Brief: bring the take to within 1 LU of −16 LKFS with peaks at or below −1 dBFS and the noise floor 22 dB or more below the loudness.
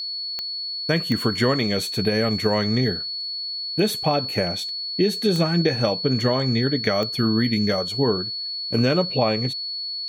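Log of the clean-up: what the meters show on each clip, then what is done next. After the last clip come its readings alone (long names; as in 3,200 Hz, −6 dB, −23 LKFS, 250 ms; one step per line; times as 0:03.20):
number of clicks 4; interfering tone 4,400 Hz; level of the tone −27 dBFS; integrated loudness −22.0 LKFS; sample peak −5.5 dBFS; target loudness −16.0 LKFS
→ click removal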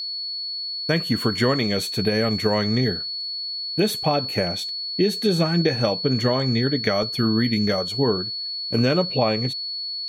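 number of clicks 0; interfering tone 4,400 Hz; level of the tone −27 dBFS
→ notch filter 4,400 Hz, Q 30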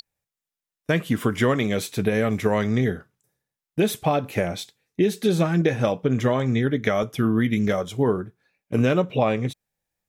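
interfering tone none found; integrated loudness −23.0 LKFS; sample peak −6.0 dBFS; target loudness −16.0 LKFS
→ level +7 dB
brickwall limiter −1 dBFS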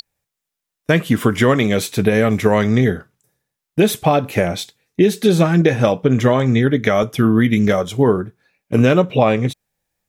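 integrated loudness −16.5 LKFS; sample peak −1.0 dBFS; background noise floor −82 dBFS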